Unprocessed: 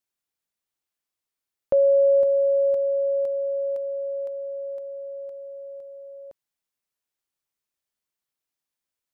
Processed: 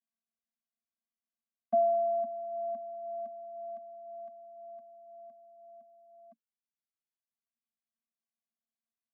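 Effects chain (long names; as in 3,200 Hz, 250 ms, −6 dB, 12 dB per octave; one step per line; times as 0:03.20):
reverb reduction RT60 1.7 s
channel vocoder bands 16, square 227 Hz
level −5.5 dB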